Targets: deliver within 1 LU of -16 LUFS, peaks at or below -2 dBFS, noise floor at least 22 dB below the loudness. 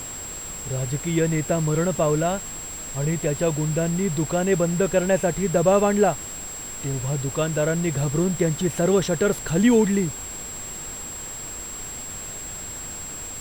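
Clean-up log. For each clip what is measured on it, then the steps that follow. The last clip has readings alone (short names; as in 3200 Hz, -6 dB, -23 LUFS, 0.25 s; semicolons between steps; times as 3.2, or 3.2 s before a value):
steady tone 7600 Hz; tone level -33 dBFS; noise floor -35 dBFS; noise floor target -46 dBFS; loudness -23.5 LUFS; peak -7.0 dBFS; loudness target -16.0 LUFS
-> notch 7600 Hz, Q 30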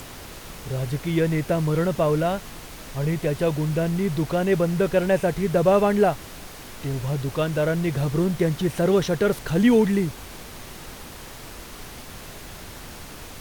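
steady tone none; noise floor -40 dBFS; noise floor target -45 dBFS
-> noise print and reduce 6 dB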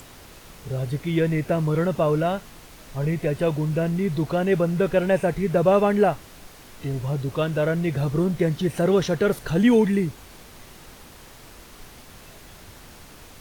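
noise floor -46 dBFS; loudness -23.0 LUFS; peak -7.0 dBFS; loudness target -16.0 LUFS
-> gain +7 dB; limiter -2 dBFS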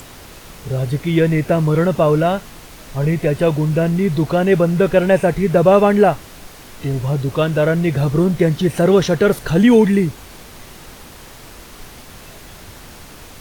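loudness -16.0 LUFS; peak -2.0 dBFS; noise floor -39 dBFS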